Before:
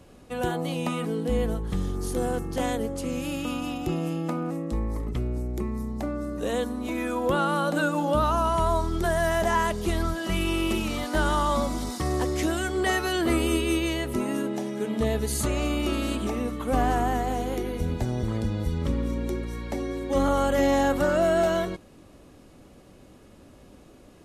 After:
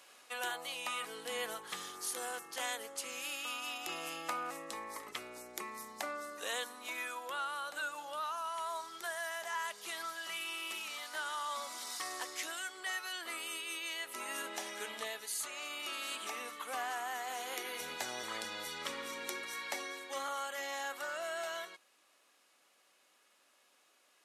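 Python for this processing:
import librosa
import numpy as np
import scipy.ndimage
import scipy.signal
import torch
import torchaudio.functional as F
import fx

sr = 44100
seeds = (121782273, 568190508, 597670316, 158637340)

y = scipy.signal.sosfilt(scipy.signal.butter(2, 1300.0, 'highpass', fs=sr, output='sos'), x)
y = fx.rider(y, sr, range_db=10, speed_s=0.5)
y = y * librosa.db_to_amplitude(-5.0)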